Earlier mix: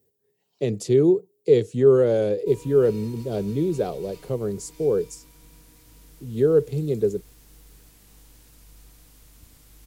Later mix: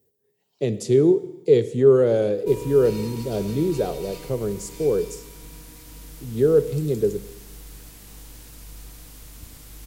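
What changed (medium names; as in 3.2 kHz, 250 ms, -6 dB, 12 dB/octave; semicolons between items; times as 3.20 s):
background +9.0 dB; reverb: on, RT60 1.0 s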